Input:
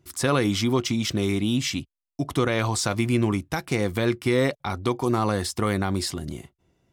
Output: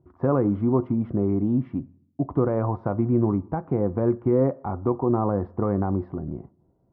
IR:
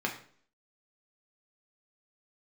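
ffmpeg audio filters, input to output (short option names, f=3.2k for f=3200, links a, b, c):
-filter_complex "[0:a]lowpass=f=1k:w=0.5412,lowpass=f=1k:w=1.3066,asplit=2[a][b];[1:a]atrim=start_sample=2205,asetrate=32193,aresample=44100[c];[b][c]afir=irnorm=-1:irlink=0,volume=-22dB[d];[a][d]amix=inputs=2:normalize=0"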